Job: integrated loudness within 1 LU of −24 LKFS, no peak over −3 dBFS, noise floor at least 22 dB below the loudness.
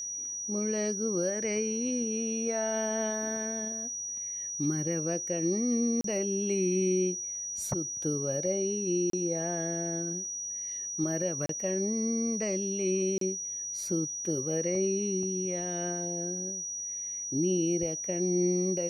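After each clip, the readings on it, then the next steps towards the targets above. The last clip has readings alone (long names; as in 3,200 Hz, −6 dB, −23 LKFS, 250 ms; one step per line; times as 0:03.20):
number of dropouts 4; longest dropout 33 ms; interfering tone 5,800 Hz; level of the tone −34 dBFS; integrated loudness −30.5 LKFS; sample peak −18.5 dBFS; target loudness −24.0 LKFS
→ repair the gap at 0:06.01/0:09.10/0:11.46/0:13.18, 33 ms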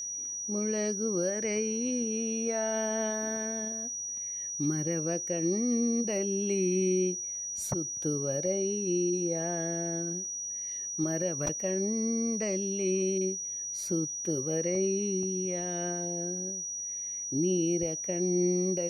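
number of dropouts 0; interfering tone 5,800 Hz; level of the tone −34 dBFS
→ notch filter 5,800 Hz, Q 30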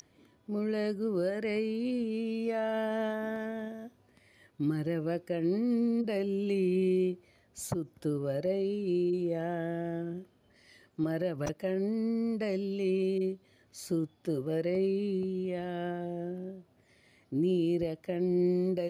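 interfering tone none found; integrated loudness −32.0 LKFS; sample peak −20.0 dBFS; target loudness −24.0 LKFS
→ level +8 dB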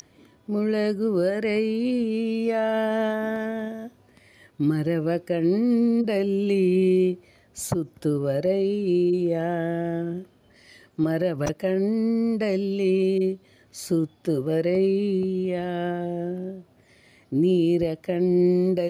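integrated loudness −24.0 LKFS; sample peak −12.0 dBFS; background noise floor −58 dBFS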